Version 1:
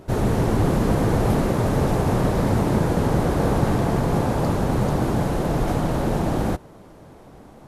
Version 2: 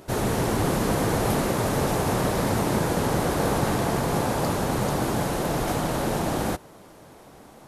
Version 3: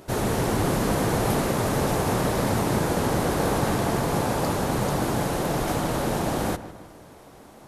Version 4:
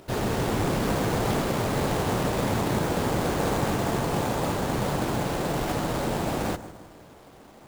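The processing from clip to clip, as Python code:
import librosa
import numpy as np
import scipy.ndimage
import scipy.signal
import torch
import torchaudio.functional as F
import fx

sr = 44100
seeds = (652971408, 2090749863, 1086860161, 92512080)

y1 = fx.tilt_eq(x, sr, slope=2.0)
y2 = fx.echo_filtered(y1, sr, ms=156, feedback_pct=52, hz=2900.0, wet_db=-14.5)
y3 = fx.sample_hold(y2, sr, seeds[0], rate_hz=8200.0, jitter_pct=20)
y3 = y3 * 10.0 ** (-2.0 / 20.0)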